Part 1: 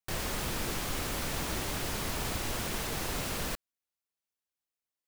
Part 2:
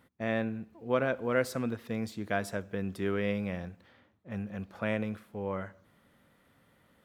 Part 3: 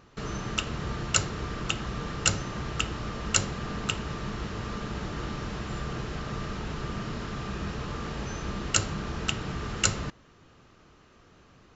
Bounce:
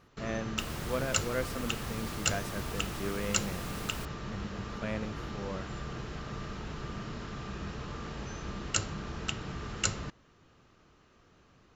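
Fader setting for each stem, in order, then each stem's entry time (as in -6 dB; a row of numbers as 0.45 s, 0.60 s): -8.5 dB, -5.5 dB, -5.5 dB; 0.50 s, 0.00 s, 0.00 s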